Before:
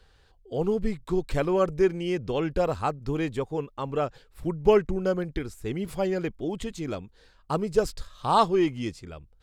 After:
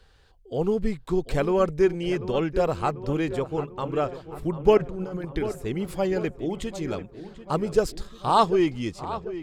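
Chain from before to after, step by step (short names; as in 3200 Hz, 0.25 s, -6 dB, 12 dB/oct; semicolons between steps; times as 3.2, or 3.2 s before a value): 4.77–5.25 negative-ratio compressor -34 dBFS, ratio -1; on a send: darkening echo 0.742 s, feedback 61%, low-pass 2800 Hz, level -13 dB; on the sum: gain +1.5 dB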